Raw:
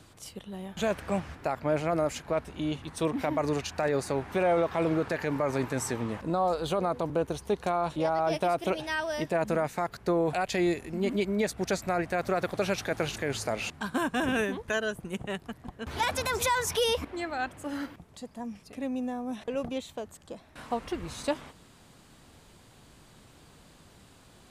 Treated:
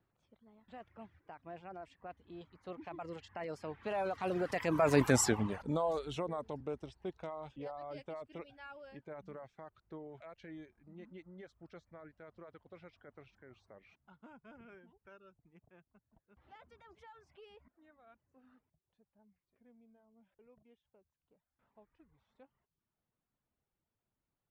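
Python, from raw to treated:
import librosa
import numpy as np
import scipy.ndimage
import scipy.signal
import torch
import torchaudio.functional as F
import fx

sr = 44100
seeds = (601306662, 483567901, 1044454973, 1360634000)

y = fx.doppler_pass(x, sr, speed_mps=39, closest_m=8.8, pass_at_s=5.1)
y = fx.env_lowpass(y, sr, base_hz=2100.0, full_db=-35.5)
y = fx.dereverb_blind(y, sr, rt60_s=0.58)
y = y * librosa.db_to_amplitude(4.5)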